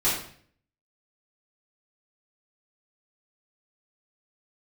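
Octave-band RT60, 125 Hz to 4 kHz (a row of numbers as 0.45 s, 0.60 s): 0.75 s, 0.65 s, 0.60 s, 0.50 s, 0.55 s, 0.50 s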